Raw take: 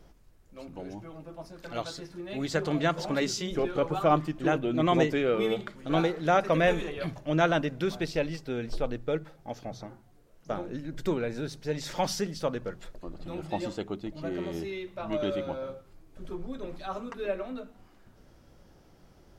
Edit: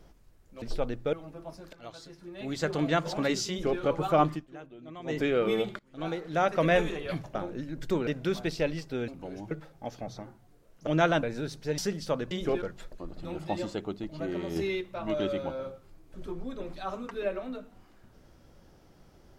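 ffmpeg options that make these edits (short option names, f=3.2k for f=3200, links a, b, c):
-filter_complex "[0:a]asplit=18[a][b][c][d][e][f][g][h][i][j][k][l][m][n][o][p][q][r];[a]atrim=end=0.622[s];[b]atrim=start=8.638:end=9.152[t];[c]atrim=start=1.048:end=1.65,asetpts=PTS-STARTPTS,afade=t=out:st=0.598:d=0.004:c=hsin:silence=0.177828[u];[d]atrim=start=1.65:end=4.42,asetpts=PTS-STARTPTS,afade=t=in:d=1.09:silence=0.177828,afade=t=out:st=2.61:d=0.16:c=qua:silence=0.105925[v];[e]atrim=start=4.42:end=4.94,asetpts=PTS-STARTPTS,volume=-19.5dB[w];[f]atrim=start=4.94:end=5.71,asetpts=PTS-STARTPTS,afade=t=in:d=0.16:c=qua:silence=0.105925,afade=t=out:st=0.766:d=0.004:c=hsin:silence=0.0841395[x];[g]atrim=start=5.71:end=7.272,asetpts=PTS-STARTPTS,afade=t=in:d=0.88:silence=0.0841395[y];[h]atrim=start=10.508:end=11.232[z];[i]atrim=start=7.628:end=8.642[aa];[j]atrim=start=0.618:end=1.052[ab];[k]atrim=start=9.148:end=10.512[ac];[l]atrim=start=7.268:end=7.632[ad];[m]atrim=start=11.228:end=11.782[ae];[n]atrim=start=12.118:end=12.652[af];[o]atrim=start=3.408:end=3.722[ag];[p]atrim=start=12.648:end=14.592[ah];[q]atrim=start=14.588:end=14.842,asetpts=PTS-STARTPTS,volume=5.5dB[ai];[r]atrim=start=14.838[aj];[s][t]acrossfade=d=0.004:c1=hsin:c2=hsin[ak];[u][v][w][x][y]concat=n=5:v=0:a=1[al];[ak][al]acrossfade=d=0.004:c1=hsin:c2=hsin[am];[am][z]acrossfade=d=0.004:c1=hsin:c2=hsin[an];[an][aa]acrossfade=d=0.004:c1=hsin:c2=hsin[ao];[ao][ab]acrossfade=d=0.004:c1=hsin:c2=hsin[ap];[ap][ac]acrossfade=d=0.004:c1=hsin:c2=hsin[aq];[aq][ad]acrossfade=d=0.004:c1=hsin:c2=hsin[ar];[ar][ae]acrossfade=d=0.004:c1=hsin:c2=hsin[as];[as][af]acrossfade=d=0.004:c1=hsin:c2=hsin[at];[at][ag]acrossfade=d=0.004:c1=hsin:c2=hsin[au];[au][ah]acrossfade=d=0.004:c1=hsin:c2=hsin[av];[av][ai]acrossfade=d=0.004:c1=hsin:c2=hsin[aw];[aw][aj]acrossfade=d=0.004:c1=hsin:c2=hsin"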